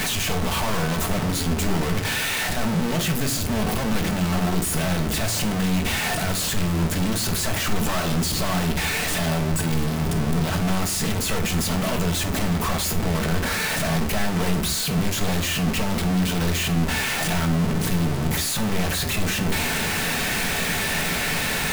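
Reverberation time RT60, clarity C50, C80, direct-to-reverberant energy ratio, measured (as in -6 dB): not exponential, 12.0 dB, 16.5 dB, 4.0 dB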